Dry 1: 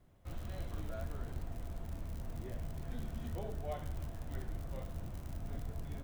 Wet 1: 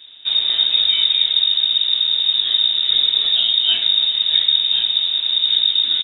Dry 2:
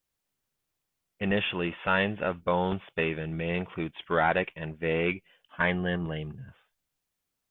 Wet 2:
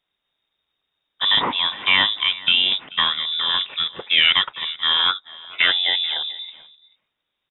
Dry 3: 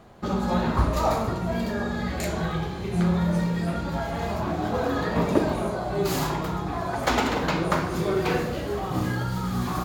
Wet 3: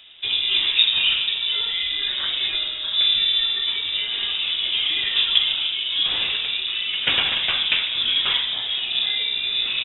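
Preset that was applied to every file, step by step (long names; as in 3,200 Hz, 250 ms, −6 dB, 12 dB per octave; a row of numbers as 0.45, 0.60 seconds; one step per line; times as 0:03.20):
single-tap delay 436 ms −21 dB
voice inversion scrambler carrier 3,700 Hz
normalise the peak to −3 dBFS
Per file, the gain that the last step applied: +21.5, +8.5, +3.0 decibels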